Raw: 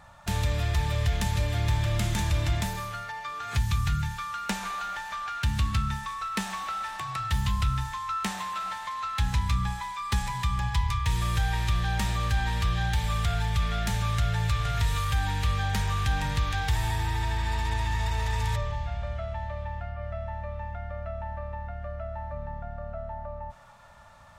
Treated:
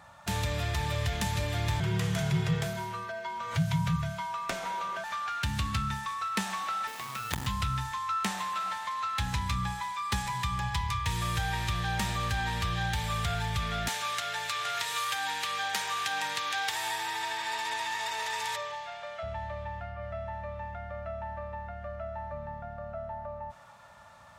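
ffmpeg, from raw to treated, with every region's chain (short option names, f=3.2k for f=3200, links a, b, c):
-filter_complex "[0:a]asettb=1/sr,asplit=3[a][b][c];[a]atrim=end=1.804[d];[b]atrim=start=1.8:end=5.04,asetpts=PTS-STARTPTS,afade=t=in:d=0.004:c=qsin,afade=t=out:st=3.236:d=0.004:c=qsin,highshelf=f=4k:g=-6,afreqshift=-220[e];[c]atrim=start=5.036[f];[d][e]acrossfade=d=0.004:c1=hsin:c2=qsin[g];[g][f]acrossfade=d=0.004:c1=qsin:c2=hsin,asettb=1/sr,asplit=3[h][i][j];[h]atrim=end=6.874[k];[i]atrim=start=6.87:end=7.47,asetpts=PTS-STARTPTS,afade=t=in:d=0.004:c=qsin,afade=t=out:st=0.596:d=0.004:c=qsin,highpass=44,acrusher=bits=4:dc=4:mix=0:aa=0.000001[l];[j]atrim=start=7.466[m];[k][l]acrossfade=d=0.004:c1=hsin:c2=qsin[n];[n][m]acrossfade=d=0.004:c1=qsin:c2=hsin,asettb=1/sr,asplit=3[o][p][q];[o]atrim=end=13.884[r];[p]atrim=start=13.88:end=19.23,asetpts=PTS-STARTPTS,afade=t=in:d=0.004:c=qsin,afade=t=out:st=5.346:d=0.004:c=qsin,highpass=480,equalizer=f=5.6k:w=0.32:g=3.5[s];[q]atrim=start=19.226[t];[r][s]acrossfade=d=0.004:c1=hsin:c2=qsin[u];[u][t]acrossfade=d=0.004:c1=qsin:c2=hsin,highpass=57,lowshelf=f=88:g=-9"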